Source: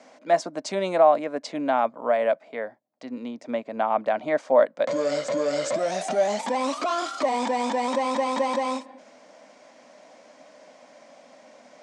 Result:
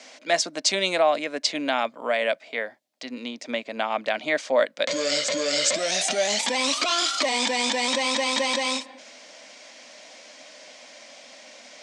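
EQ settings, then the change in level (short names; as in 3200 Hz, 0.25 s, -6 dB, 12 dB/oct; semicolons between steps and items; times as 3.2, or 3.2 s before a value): high shelf 4500 Hz +8 dB; dynamic EQ 850 Hz, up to -4 dB, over -30 dBFS, Q 0.86; weighting filter D; 0.0 dB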